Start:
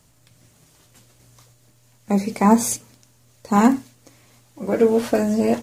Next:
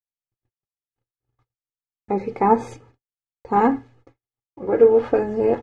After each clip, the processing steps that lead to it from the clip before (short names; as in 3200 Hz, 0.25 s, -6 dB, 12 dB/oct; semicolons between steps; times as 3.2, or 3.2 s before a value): LPF 1600 Hz 12 dB/oct; gate -49 dBFS, range -57 dB; comb 2.4 ms, depth 67%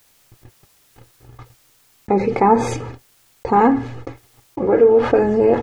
fast leveller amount 50%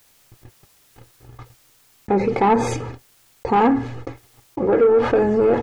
soft clip -9 dBFS, distortion -16 dB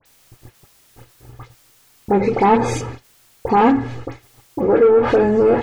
dispersion highs, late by 58 ms, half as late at 2500 Hz; gain +2.5 dB